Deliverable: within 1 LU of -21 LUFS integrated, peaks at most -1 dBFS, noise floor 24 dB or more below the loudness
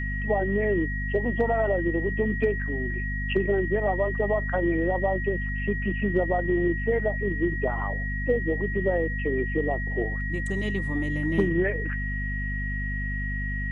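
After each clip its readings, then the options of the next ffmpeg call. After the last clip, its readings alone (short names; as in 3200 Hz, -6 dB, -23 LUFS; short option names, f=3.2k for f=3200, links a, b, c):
hum 50 Hz; harmonics up to 250 Hz; hum level -28 dBFS; steady tone 1900 Hz; tone level -32 dBFS; loudness -26.5 LUFS; peak -11.5 dBFS; loudness target -21.0 LUFS
-> -af "bandreject=f=50:t=h:w=4,bandreject=f=100:t=h:w=4,bandreject=f=150:t=h:w=4,bandreject=f=200:t=h:w=4,bandreject=f=250:t=h:w=4"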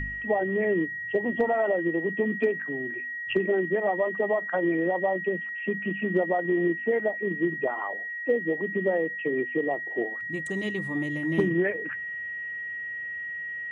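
hum none; steady tone 1900 Hz; tone level -32 dBFS
-> -af "bandreject=f=1.9k:w=30"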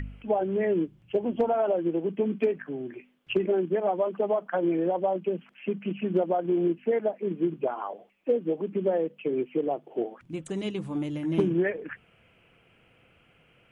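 steady tone none; loudness -28.5 LUFS; peak -14.5 dBFS; loudness target -21.0 LUFS
-> -af "volume=7.5dB"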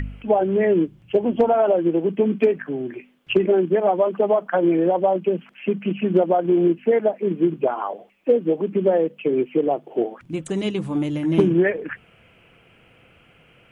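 loudness -21.0 LUFS; peak -7.0 dBFS; noise floor -55 dBFS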